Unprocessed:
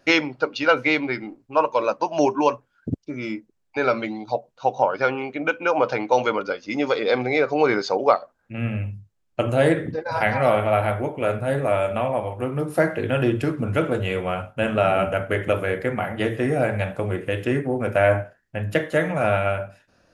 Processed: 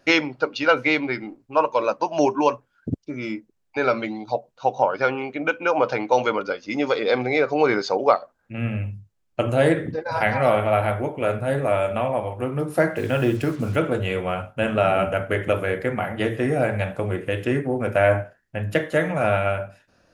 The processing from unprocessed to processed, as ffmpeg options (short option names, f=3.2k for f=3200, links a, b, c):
-filter_complex "[0:a]asettb=1/sr,asplit=3[a][b][c];[a]atrim=end=12.964[d];[b]atrim=start=12.96:end=13.76,asetpts=PTS-STARTPTS,afade=t=in:d=0.004:c=qsin,afade=t=out:st=0.796:d=0.004:c=qsin,acrusher=bits=6:mix=0:aa=0.5[e];[c]atrim=start=13.756[f];[d][e]acrossfade=d=0.004:c1=hsin:c2=qsin[g];[g][f]acrossfade=d=0.004:c1=qsin:c2=hsin"